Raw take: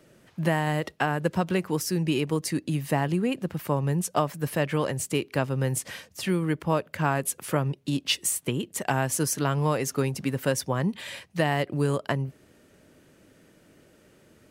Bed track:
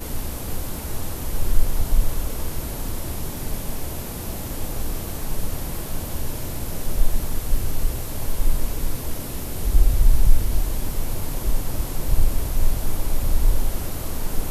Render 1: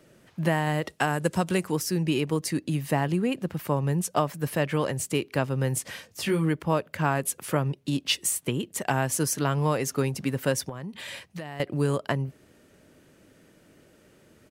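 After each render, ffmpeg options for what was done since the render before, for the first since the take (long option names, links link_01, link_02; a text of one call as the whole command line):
ffmpeg -i in.wav -filter_complex "[0:a]asettb=1/sr,asplit=3[link_01][link_02][link_03];[link_01]atrim=end=0.894[link_04];[link_02]atrim=start=0.89:end=1.72,asetpts=PTS-STARTPTS,afade=type=in:duration=0.004:curve=qsin,afade=type=out:start_time=0.826:duration=0.004:curve=qsin,equalizer=frequency=8800:width_type=o:width=1.2:gain=11.5[link_05];[link_03]atrim=start=1.716[link_06];[link_04][link_05]acrossfade=duration=0.004:curve1=hsin:curve2=qsin[link_07];[link_07][link_06]acrossfade=duration=0.004:curve1=qsin:curve2=hsin,asplit=3[link_08][link_09][link_10];[link_08]afade=type=out:start_time=6.08:duration=0.02[link_11];[link_09]asplit=2[link_12][link_13];[link_13]adelay=19,volume=-3.5dB[link_14];[link_12][link_14]amix=inputs=2:normalize=0,afade=type=in:start_time=6.08:duration=0.02,afade=type=out:start_time=6.48:duration=0.02[link_15];[link_10]afade=type=in:start_time=6.48:duration=0.02[link_16];[link_11][link_15][link_16]amix=inputs=3:normalize=0,asettb=1/sr,asplit=3[link_17][link_18][link_19];[link_17]atrim=end=10.694[link_20];[link_18]atrim=start=10.69:end=11.6,asetpts=PTS-STARTPTS,afade=type=in:duration=0.004:curve=qsin,afade=type=out:start_time=0.906:duration=0.004:curve=qsin,acompressor=threshold=-33dB:ratio=6:attack=3.2:release=140:knee=1:detection=peak[link_21];[link_19]atrim=start=11.596[link_22];[link_20][link_21]acrossfade=duration=0.004:curve1=hsin:curve2=qsin[link_23];[link_23][link_22]acrossfade=duration=0.004:curve1=qsin:curve2=hsin" out.wav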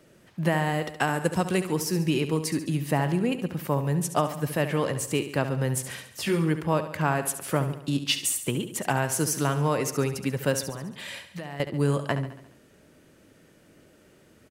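ffmpeg -i in.wav -af "aecho=1:1:70|140|210|280|350|420:0.282|0.152|0.0822|0.0444|0.024|0.0129" out.wav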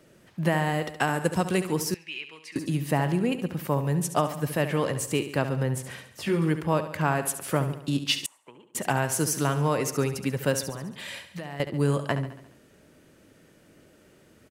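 ffmpeg -i in.wav -filter_complex "[0:a]asettb=1/sr,asplit=3[link_01][link_02][link_03];[link_01]atrim=end=1.944[link_04];[link_02]atrim=start=1.94:end=2.56,asetpts=PTS-STARTPTS,afade=type=in:duration=0.004:curve=qsin,afade=type=out:start_time=0.616:duration=0.004:curve=qsin,bandpass=frequency=2500:width_type=q:width=2.6[link_05];[link_03]atrim=start=2.556[link_06];[link_04][link_05]acrossfade=duration=0.004:curve1=hsin:curve2=qsin[link_07];[link_07][link_06]acrossfade=duration=0.004:curve1=qsin:curve2=hsin,asettb=1/sr,asplit=3[link_08][link_09][link_10];[link_08]atrim=end=5.634[link_11];[link_09]atrim=start=5.63:end=6.42,asetpts=PTS-STARTPTS,afade=type=in:duration=0.004:curve=qsin,afade=type=out:start_time=0.786:duration=0.004:curve=qsin,highshelf=frequency=3100:gain=-8[link_12];[link_10]atrim=start=6.416[link_13];[link_11][link_12]acrossfade=duration=0.004:curve1=hsin:curve2=qsin[link_14];[link_14][link_13]acrossfade=duration=0.004:curve1=qsin:curve2=hsin,asettb=1/sr,asplit=3[link_15][link_16][link_17];[link_15]atrim=end=8.264[link_18];[link_16]atrim=start=8.26:end=8.75,asetpts=PTS-STARTPTS,afade=type=in:duration=0.004:curve=qsin,afade=type=out:start_time=0.486:duration=0.004:curve=qsin,bandpass=frequency=950:width_type=q:width=5.1[link_19];[link_17]atrim=start=8.746[link_20];[link_18][link_19]acrossfade=duration=0.004:curve1=hsin:curve2=qsin[link_21];[link_21][link_20]acrossfade=duration=0.004:curve1=qsin:curve2=hsin" out.wav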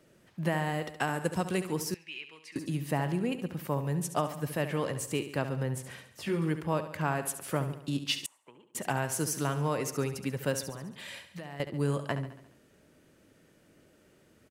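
ffmpeg -i in.wav -af "volume=-5.5dB" out.wav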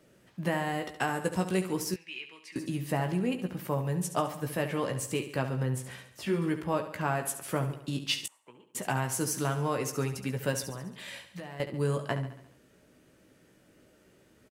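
ffmpeg -i in.wav -filter_complex "[0:a]asplit=2[link_01][link_02];[link_02]adelay=16,volume=-7dB[link_03];[link_01][link_03]amix=inputs=2:normalize=0" out.wav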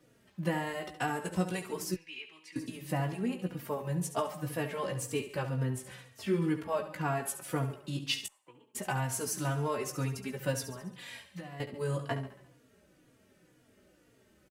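ffmpeg -i in.wav -filter_complex "[0:a]asplit=2[link_01][link_02];[link_02]adelay=3.6,afreqshift=-2[link_03];[link_01][link_03]amix=inputs=2:normalize=1" out.wav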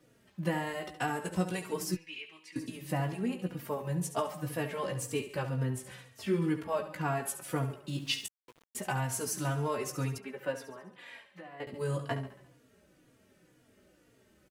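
ffmpeg -i in.wav -filter_complex "[0:a]asettb=1/sr,asplit=3[link_01][link_02][link_03];[link_01]atrim=end=1.624[link_04];[link_02]atrim=start=1.62:end=2.37,asetpts=PTS-STARTPTS,afade=type=in:duration=0.004:curve=qsin,afade=type=out:start_time=0.746:duration=0.004:curve=qsin,aecho=1:1:6.4:0.53,atrim=end_sample=33075[link_05];[link_03]atrim=start=2.366[link_06];[link_04][link_05]acrossfade=duration=0.004:curve1=hsin:curve2=qsin[link_07];[link_07][link_06]acrossfade=duration=0.004:curve1=qsin:curve2=hsin,asettb=1/sr,asplit=3[link_08][link_09][link_10];[link_08]atrim=end=7.894[link_11];[link_09]atrim=start=7.89:end=8.85,asetpts=PTS-STARTPTS,afade=type=in:duration=0.004:curve=qsin,afade=type=out:start_time=0.956:duration=0.004:curve=qsin,aeval=exprs='val(0)*gte(abs(val(0)),0.00224)':channel_layout=same[link_12];[link_10]atrim=start=8.846[link_13];[link_11][link_12]acrossfade=duration=0.004:curve1=hsin:curve2=qsin[link_14];[link_14][link_13]acrossfade=duration=0.004:curve1=qsin:curve2=hsin,asettb=1/sr,asplit=3[link_15][link_16][link_17];[link_15]atrim=end=10.184[link_18];[link_16]atrim=start=10.18:end=11.67,asetpts=PTS-STARTPTS,afade=type=in:duration=0.004:curve=qsin,afade=type=out:start_time=1.486:duration=0.004:curve=qsin,acrossover=split=270 2800:gain=0.126 1 0.2[link_19][link_20][link_21];[link_19][link_20][link_21]amix=inputs=3:normalize=0[link_22];[link_17]atrim=start=11.666[link_23];[link_18][link_22]acrossfade=duration=0.004:curve1=hsin:curve2=qsin[link_24];[link_24][link_23]acrossfade=duration=0.004:curve1=qsin:curve2=hsin" out.wav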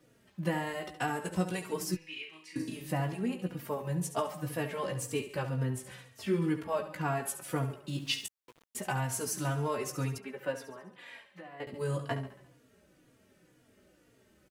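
ffmpeg -i in.wav -filter_complex "[0:a]asettb=1/sr,asplit=3[link_01][link_02][link_03];[link_01]atrim=end=1.984[link_04];[link_02]atrim=start=1.98:end=2.89,asetpts=PTS-STARTPTS,afade=type=in:duration=0.004:curve=qsin,afade=type=out:start_time=0.906:duration=0.004:curve=qsin,asplit=2[link_05][link_06];[link_06]adelay=38,volume=-4.5dB[link_07];[link_05][link_07]amix=inputs=2:normalize=0,atrim=end_sample=40131[link_08];[link_03]atrim=start=2.886[link_09];[link_04][link_08]acrossfade=duration=0.004:curve1=hsin:curve2=qsin[link_10];[link_10][link_09]acrossfade=duration=0.004:curve1=qsin:curve2=hsin" out.wav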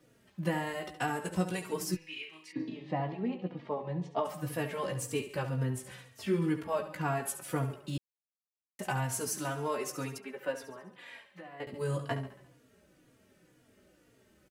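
ffmpeg -i in.wav -filter_complex "[0:a]asplit=3[link_01][link_02][link_03];[link_01]afade=type=out:start_time=2.51:duration=0.02[link_04];[link_02]highpass=160,equalizer=frequency=780:width_type=q:width=4:gain=4,equalizer=frequency=1500:width_type=q:width=4:gain=-10,equalizer=frequency=2700:width_type=q:width=4:gain=-6,lowpass=frequency=3600:width=0.5412,lowpass=frequency=3600:width=1.3066,afade=type=in:start_time=2.51:duration=0.02,afade=type=out:start_time=4.24:duration=0.02[link_05];[link_03]afade=type=in:start_time=4.24:duration=0.02[link_06];[link_04][link_05][link_06]amix=inputs=3:normalize=0,asettb=1/sr,asplit=3[link_07][link_08][link_09];[link_07]atrim=end=9.374[link_10];[link_08]atrim=start=9.37:end=10.63,asetpts=PTS-STARTPTS,afade=type=in:duration=0.004:curve=qsin,afade=type=out:start_time=1.256:duration=0.004:curve=qsin,highpass=210[link_11];[link_09]atrim=start=10.626[link_12];[link_10][link_11]acrossfade=duration=0.004:curve1=hsin:curve2=qsin[link_13];[link_13][link_12]acrossfade=duration=0.004:curve1=qsin:curve2=hsin,asplit=3[link_14][link_15][link_16];[link_14]atrim=end=7.98,asetpts=PTS-STARTPTS,afade=type=out:start_time=7.976:duration=0.004:curve=hsin[link_17];[link_15]atrim=start=7.98:end=8.79,asetpts=PTS-STARTPTS,volume=0[link_18];[link_16]atrim=start=8.79,asetpts=PTS-STARTPTS,afade=type=in:duration=0.004:curve=hsin[link_19];[link_17][link_18][link_19]concat=n=3:v=0:a=1" out.wav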